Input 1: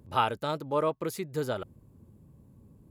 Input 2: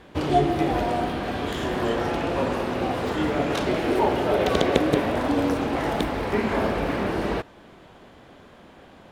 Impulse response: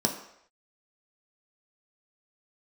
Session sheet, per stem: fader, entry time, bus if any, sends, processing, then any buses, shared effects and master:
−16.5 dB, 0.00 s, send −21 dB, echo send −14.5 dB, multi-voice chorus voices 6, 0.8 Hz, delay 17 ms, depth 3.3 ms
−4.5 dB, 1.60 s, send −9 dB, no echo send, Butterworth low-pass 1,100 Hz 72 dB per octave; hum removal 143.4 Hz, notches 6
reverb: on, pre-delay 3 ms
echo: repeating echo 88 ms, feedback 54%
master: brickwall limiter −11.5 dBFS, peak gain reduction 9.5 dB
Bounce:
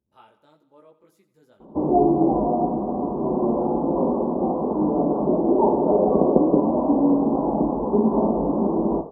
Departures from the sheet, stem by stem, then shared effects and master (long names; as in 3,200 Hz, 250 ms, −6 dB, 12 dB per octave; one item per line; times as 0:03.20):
stem 1 −16.5 dB → −24.0 dB
master: missing brickwall limiter −11.5 dBFS, peak gain reduction 9.5 dB